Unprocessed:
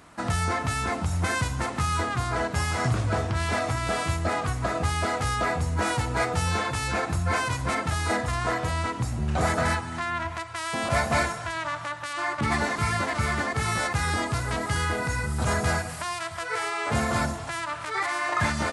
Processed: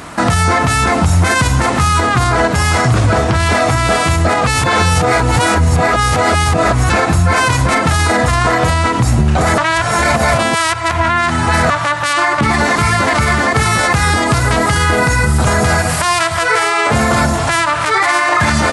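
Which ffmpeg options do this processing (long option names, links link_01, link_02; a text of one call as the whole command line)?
ffmpeg -i in.wav -filter_complex "[0:a]asplit=5[link_01][link_02][link_03][link_04][link_05];[link_01]atrim=end=4.472[link_06];[link_02]atrim=start=4.468:end=6.902,asetpts=PTS-STARTPTS,areverse[link_07];[link_03]atrim=start=6.898:end=9.582[link_08];[link_04]atrim=start=9.578:end=11.702,asetpts=PTS-STARTPTS,areverse[link_09];[link_05]atrim=start=11.698[link_10];[link_06][link_07]acrossfade=duration=0.004:curve1=hsin:curve2=hsin[link_11];[link_11][link_08]acrossfade=duration=0.004:curve1=hsin:curve2=hsin[link_12];[link_12][link_09]acrossfade=duration=0.004:curve1=hsin:curve2=hsin[link_13];[link_13][link_10]acrossfade=duration=0.004:curve1=hsin:curve2=hsin,bandreject=frequency=50:width_type=h:width=6,bandreject=frequency=100:width_type=h:width=6,acompressor=threshold=-31dB:ratio=1.5,alimiter=level_in=23.5dB:limit=-1dB:release=50:level=0:latency=1,volume=-2.5dB" out.wav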